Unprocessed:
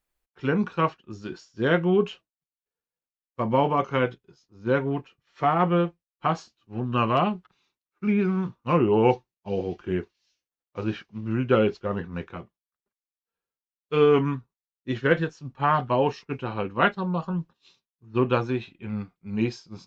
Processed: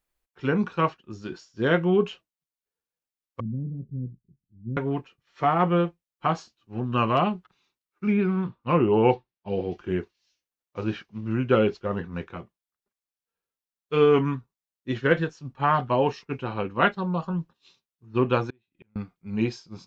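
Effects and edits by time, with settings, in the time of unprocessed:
3.40–4.77 s: inverse Chebyshev low-pass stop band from 970 Hz, stop band 70 dB
8.17–9.72 s: low-pass 4.3 kHz 24 dB/octave
18.50–18.96 s: inverted gate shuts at -36 dBFS, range -37 dB

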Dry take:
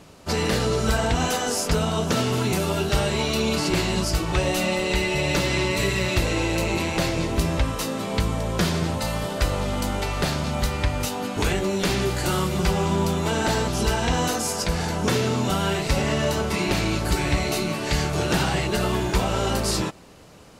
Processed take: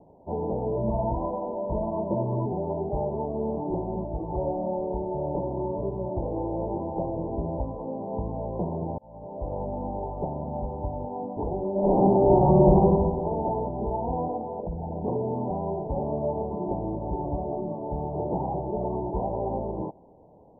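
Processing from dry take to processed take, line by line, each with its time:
0.76–2.46 s: rippled EQ curve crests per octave 1.3, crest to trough 15 dB
3.79–4.32 s: Gaussian low-pass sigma 4.4 samples
8.98–9.59 s: fade in
11.71–12.74 s: reverb throw, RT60 1.7 s, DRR -11.5 dB
14.59–15.04 s: resonances exaggerated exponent 2
whole clip: steep low-pass 940 Hz 96 dB/octave; bass shelf 330 Hz -9.5 dB

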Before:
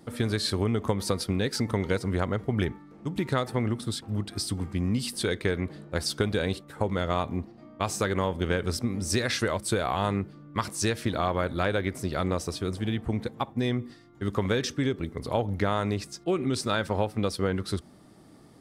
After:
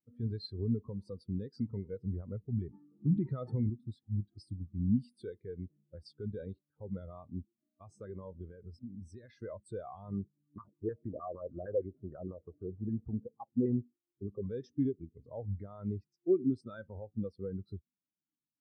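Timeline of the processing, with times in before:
2.73–3.70 s: gain +10 dB
8.46–9.40 s: compression, threshold -28 dBFS
10.12–14.47 s: LFO low-pass saw down 6.5 Hz 390–1800 Hz
whole clip: peak limiter -19 dBFS; spectral contrast expander 2.5:1

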